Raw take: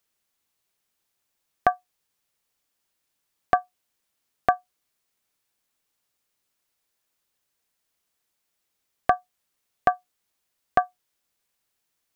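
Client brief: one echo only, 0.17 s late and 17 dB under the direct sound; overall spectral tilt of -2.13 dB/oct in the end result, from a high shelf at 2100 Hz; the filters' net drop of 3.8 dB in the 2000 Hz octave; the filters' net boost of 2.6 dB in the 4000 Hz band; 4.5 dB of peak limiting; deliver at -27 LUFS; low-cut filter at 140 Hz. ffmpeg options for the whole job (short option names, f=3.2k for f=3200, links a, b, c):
-af "highpass=140,equalizer=f=2k:t=o:g=-7.5,highshelf=f=2.1k:g=3,equalizer=f=4k:t=o:g=3.5,alimiter=limit=-10dB:level=0:latency=1,aecho=1:1:170:0.141,volume=4.5dB"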